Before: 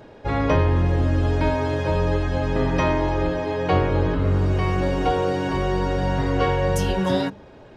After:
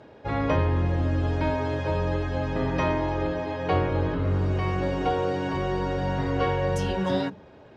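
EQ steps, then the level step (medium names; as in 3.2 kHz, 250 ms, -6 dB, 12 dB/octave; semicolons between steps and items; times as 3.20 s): high-pass 57 Hz; distance through air 57 m; hum notches 60/120/180/240/300/360/420 Hz; -3.5 dB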